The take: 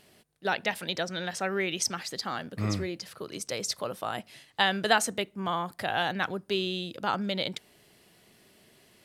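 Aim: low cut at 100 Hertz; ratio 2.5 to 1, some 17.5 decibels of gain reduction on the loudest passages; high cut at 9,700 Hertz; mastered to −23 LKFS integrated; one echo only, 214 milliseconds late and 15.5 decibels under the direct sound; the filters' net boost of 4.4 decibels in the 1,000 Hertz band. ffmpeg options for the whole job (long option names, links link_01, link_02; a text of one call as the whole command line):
ffmpeg -i in.wav -af "highpass=100,lowpass=9700,equalizer=frequency=1000:width_type=o:gain=6,acompressor=threshold=-42dB:ratio=2.5,aecho=1:1:214:0.168,volume=18dB" out.wav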